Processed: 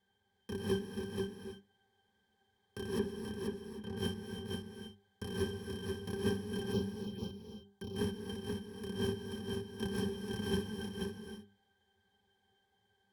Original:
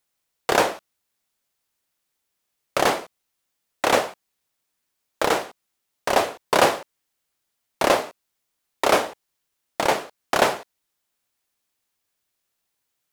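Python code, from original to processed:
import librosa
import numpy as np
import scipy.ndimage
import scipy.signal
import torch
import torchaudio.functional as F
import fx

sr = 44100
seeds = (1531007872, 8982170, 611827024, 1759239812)

y = fx.bit_reversed(x, sr, seeds[0], block=64)
y = fx.over_compress(y, sr, threshold_db=-30.0, ratio=-1.0)
y = fx.high_shelf(y, sr, hz=3900.0, db=-12.0, at=(2.99, 3.97))
y = y + 10.0 ** (-4.0 / 20.0) * np.pad(y, (int(483 * sr / 1000.0), 0))[:len(y)]
y = fx.env_phaser(y, sr, low_hz=290.0, high_hz=1800.0, full_db=-32.5, at=(6.72, 7.96))
y = fx.high_shelf(y, sr, hz=10000.0, db=5.0)
y = fx.hum_notches(y, sr, base_hz=50, count=8)
y = fx.octave_resonator(y, sr, note='G', decay_s=0.12)
y = fx.rev_gated(y, sr, seeds[1], gate_ms=340, shape='rising', drr_db=7.0)
y = y * 10.0 ** (13.0 / 20.0)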